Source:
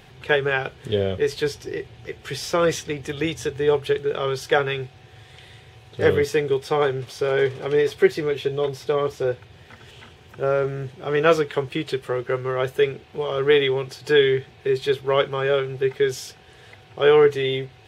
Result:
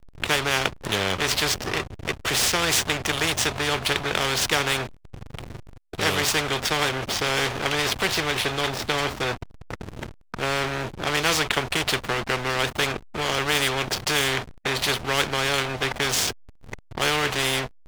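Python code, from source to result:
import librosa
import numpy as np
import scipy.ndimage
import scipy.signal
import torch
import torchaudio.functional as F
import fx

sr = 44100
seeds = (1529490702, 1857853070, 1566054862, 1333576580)

y = fx.backlash(x, sr, play_db=-32.5)
y = fx.spectral_comp(y, sr, ratio=4.0)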